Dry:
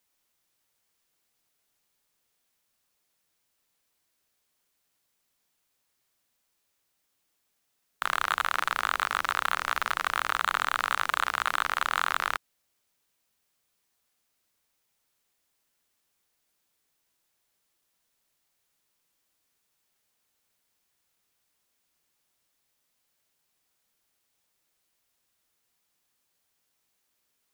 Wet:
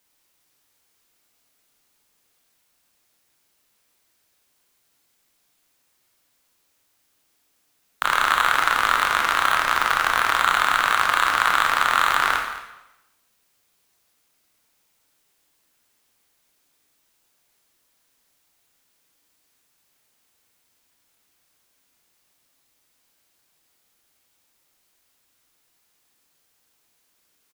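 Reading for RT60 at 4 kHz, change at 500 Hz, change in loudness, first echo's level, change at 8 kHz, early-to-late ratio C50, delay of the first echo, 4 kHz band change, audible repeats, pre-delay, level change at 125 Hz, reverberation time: 0.85 s, +9.0 dB, +8.5 dB, -15.5 dB, +8.5 dB, 4.0 dB, 222 ms, +8.5 dB, 1, 20 ms, +8.5 dB, 0.95 s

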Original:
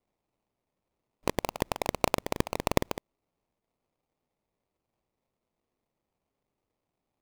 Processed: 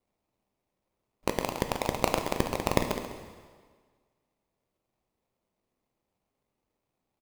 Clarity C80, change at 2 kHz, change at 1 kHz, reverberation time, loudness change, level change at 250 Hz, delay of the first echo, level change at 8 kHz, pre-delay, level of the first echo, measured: 7.0 dB, +1.5 dB, +1.5 dB, 1.6 s, +1.5 dB, +1.5 dB, 135 ms, +1.5 dB, 4 ms, -11.5 dB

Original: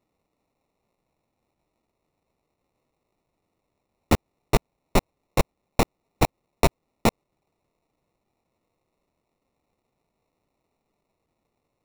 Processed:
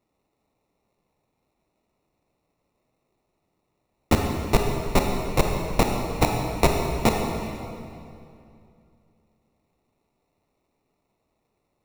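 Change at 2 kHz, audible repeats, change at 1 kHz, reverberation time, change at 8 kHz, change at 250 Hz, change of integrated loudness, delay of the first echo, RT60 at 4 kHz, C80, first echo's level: +2.0 dB, no echo, +2.5 dB, 2.6 s, +2.0 dB, +2.5 dB, +2.0 dB, no echo, 2.0 s, 3.5 dB, no echo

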